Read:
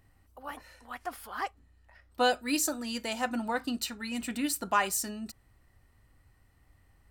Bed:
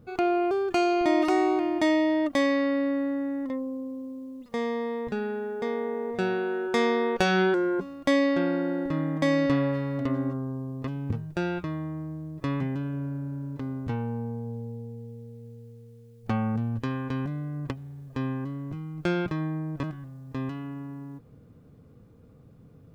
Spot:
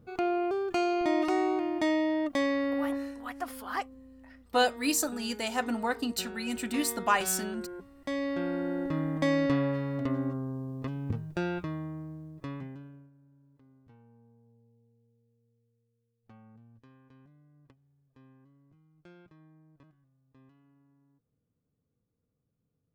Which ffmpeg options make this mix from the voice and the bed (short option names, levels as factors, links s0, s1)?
-filter_complex "[0:a]adelay=2350,volume=1.12[s0];[1:a]volume=2.51,afade=t=out:st=2.9:d=0.25:silence=0.281838,afade=t=in:st=7.94:d=0.88:silence=0.237137,afade=t=out:st=11.62:d=1.49:silence=0.0562341[s1];[s0][s1]amix=inputs=2:normalize=0"